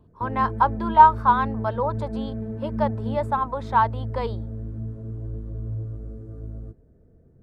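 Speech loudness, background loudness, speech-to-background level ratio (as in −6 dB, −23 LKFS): −22.0 LKFS, −32.0 LKFS, 10.0 dB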